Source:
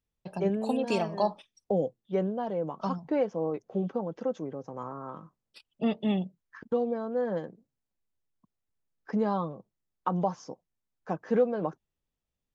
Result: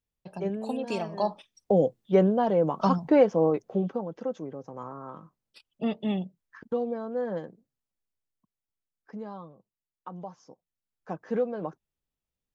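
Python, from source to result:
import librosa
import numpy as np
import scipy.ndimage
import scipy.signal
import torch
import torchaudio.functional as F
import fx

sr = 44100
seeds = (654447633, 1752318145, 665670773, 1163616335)

y = fx.gain(x, sr, db=fx.line((1.0, -3.0), (2.0, 8.0), (3.45, 8.0), (4.06, -1.0), (7.41, -1.0), (9.34, -12.0), (10.28, -12.0), (11.13, -3.0)))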